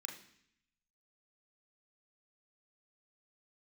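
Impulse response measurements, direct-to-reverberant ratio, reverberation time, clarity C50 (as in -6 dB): 1.5 dB, 0.65 s, 8.0 dB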